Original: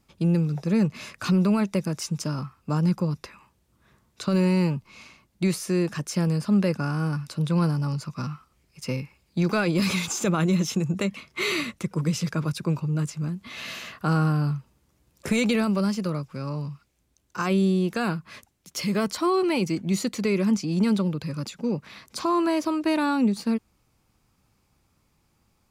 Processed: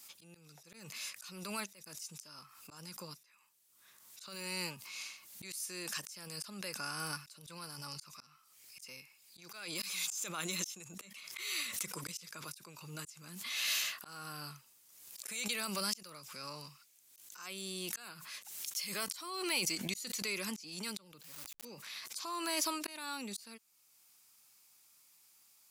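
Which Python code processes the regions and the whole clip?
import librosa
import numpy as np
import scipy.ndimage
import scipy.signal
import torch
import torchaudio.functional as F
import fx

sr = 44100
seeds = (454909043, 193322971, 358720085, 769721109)

y = fx.chain(x, sr, fx.delta_hold(step_db=-35.5),
    fx.sustainer(db_per_s=50.0), at=(21.22, 21.65))
y = np.diff(y, prepend=0.0)
y = fx.auto_swell(y, sr, attack_ms=687.0)
y = fx.pre_swell(y, sr, db_per_s=48.0)
y = y * 10.0 ** (10.0 / 20.0)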